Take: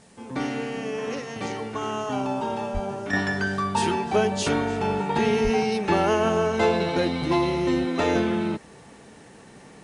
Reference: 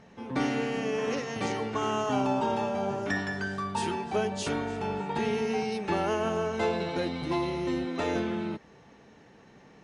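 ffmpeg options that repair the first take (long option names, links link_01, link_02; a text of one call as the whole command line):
ffmpeg -i in.wav -filter_complex "[0:a]asplit=3[link_01][link_02][link_03];[link_01]afade=type=out:start_time=2.73:duration=0.02[link_04];[link_02]highpass=frequency=140:width=0.5412,highpass=frequency=140:width=1.3066,afade=type=in:start_time=2.73:duration=0.02,afade=type=out:start_time=2.85:duration=0.02[link_05];[link_03]afade=type=in:start_time=2.85:duration=0.02[link_06];[link_04][link_05][link_06]amix=inputs=3:normalize=0,asplit=3[link_07][link_08][link_09];[link_07]afade=type=out:start_time=5.43:duration=0.02[link_10];[link_08]highpass=frequency=140:width=0.5412,highpass=frequency=140:width=1.3066,afade=type=in:start_time=5.43:duration=0.02,afade=type=out:start_time=5.55:duration=0.02[link_11];[link_09]afade=type=in:start_time=5.55:duration=0.02[link_12];[link_10][link_11][link_12]amix=inputs=3:normalize=0,agate=range=-21dB:threshold=-40dB,asetnsamples=nb_out_samples=441:pad=0,asendcmd='3.13 volume volume -7dB',volume=0dB" out.wav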